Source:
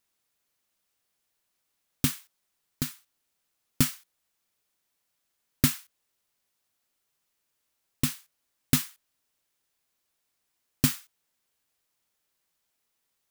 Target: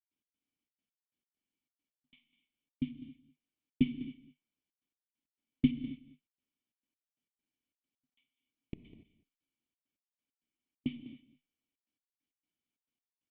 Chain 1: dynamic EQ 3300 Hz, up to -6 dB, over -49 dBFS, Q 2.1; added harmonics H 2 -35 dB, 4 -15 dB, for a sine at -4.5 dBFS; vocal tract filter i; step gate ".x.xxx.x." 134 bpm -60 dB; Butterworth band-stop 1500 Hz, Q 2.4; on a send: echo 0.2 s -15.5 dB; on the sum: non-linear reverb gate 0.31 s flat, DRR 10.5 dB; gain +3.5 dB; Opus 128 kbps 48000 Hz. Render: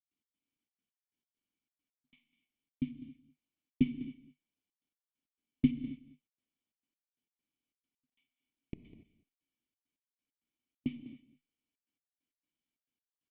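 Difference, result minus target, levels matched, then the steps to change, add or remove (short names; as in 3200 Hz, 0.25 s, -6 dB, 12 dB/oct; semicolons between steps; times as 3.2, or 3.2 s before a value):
4000 Hz band -5.0 dB
remove: dynamic EQ 3300 Hz, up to -6 dB, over -49 dBFS, Q 2.1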